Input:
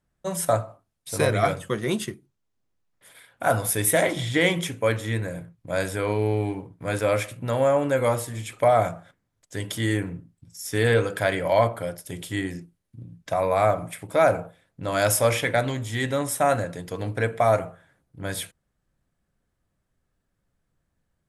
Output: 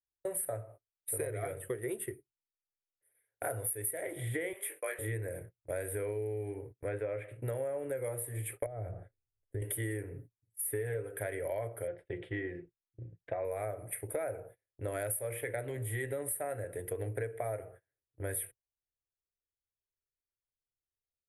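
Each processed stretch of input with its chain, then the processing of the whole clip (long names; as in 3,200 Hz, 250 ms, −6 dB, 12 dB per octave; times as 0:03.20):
0:04.53–0:04.99: high-pass filter 780 Hz + double-tracking delay 21 ms −5 dB + frequency shifter +36 Hz
0:06.72–0:07.42: low-shelf EQ 99 Hz −4.5 dB + treble cut that deepens with the level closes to 2,700 Hz, closed at −23 dBFS
0:08.66–0:09.62: spectral tilt −4 dB per octave + downward compressor 2.5 to 1, threshold −34 dBFS
0:10.12–0:11.17: comb filter 7.2 ms, depth 51% + dynamic equaliser 5,300 Hz, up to −6 dB, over −44 dBFS, Q 0.98
0:11.87–0:13.45: low-pass filter 3,700 Hz 24 dB per octave + comb filter 5.8 ms, depth 40%
whole clip: noise gate −41 dBFS, range −26 dB; drawn EQ curve 120 Hz 0 dB, 190 Hz −20 dB, 410 Hz +6 dB, 1,100 Hz −13 dB, 1,900 Hz 0 dB, 6,100 Hz −29 dB, 9,400 Hz +9 dB; downward compressor 12 to 1, threshold −31 dBFS; level −2 dB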